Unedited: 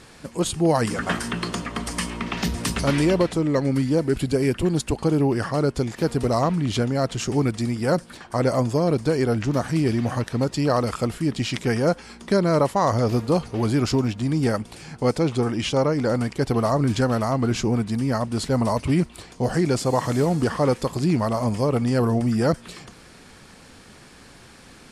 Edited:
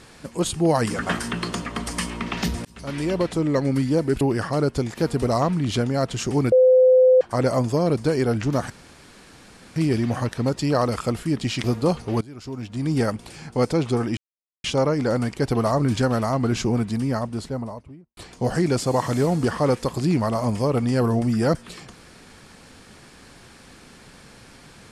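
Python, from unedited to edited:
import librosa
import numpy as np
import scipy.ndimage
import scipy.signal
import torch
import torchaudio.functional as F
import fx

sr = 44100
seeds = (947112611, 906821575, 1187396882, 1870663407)

y = fx.studio_fade_out(x, sr, start_s=17.85, length_s=1.31)
y = fx.edit(y, sr, fx.fade_in_span(start_s=2.65, length_s=0.77),
    fx.cut(start_s=4.21, length_s=1.01),
    fx.bleep(start_s=7.53, length_s=0.69, hz=512.0, db=-10.5),
    fx.insert_room_tone(at_s=9.71, length_s=1.06),
    fx.cut(start_s=11.59, length_s=1.51),
    fx.fade_in_from(start_s=13.67, length_s=0.72, curve='qua', floor_db=-21.0),
    fx.insert_silence(at_s=15.63, length_s=0.47), tone=tone)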